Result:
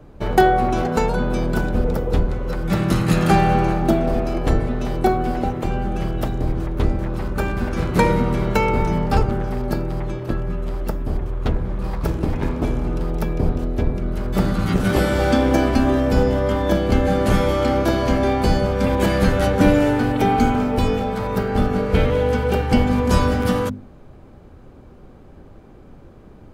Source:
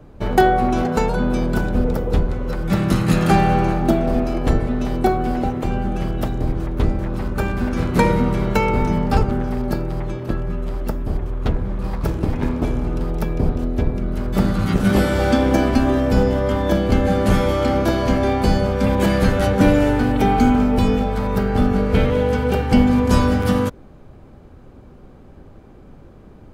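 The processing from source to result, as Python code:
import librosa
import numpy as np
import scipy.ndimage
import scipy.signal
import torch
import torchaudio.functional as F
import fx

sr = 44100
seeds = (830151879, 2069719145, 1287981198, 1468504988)

y = fx.hum_notches(x, sr, base_hz=50, count=5)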